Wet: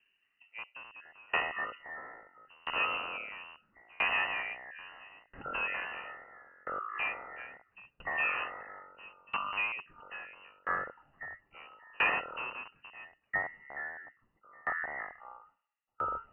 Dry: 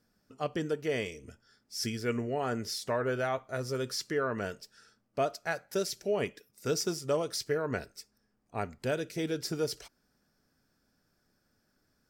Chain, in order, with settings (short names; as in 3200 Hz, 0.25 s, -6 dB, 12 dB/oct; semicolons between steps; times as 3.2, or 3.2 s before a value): rattling part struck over -41 dBFS, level -23 dBFS; inverted band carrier 3900 Hz; speed mistake 45 rpm record played at 33 rpm; echoes that change speed 0.225 s, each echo -6 st, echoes 2; dB-ramp tremolo decaying 0.75 Hz, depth 31 dB; gain +1.5 dB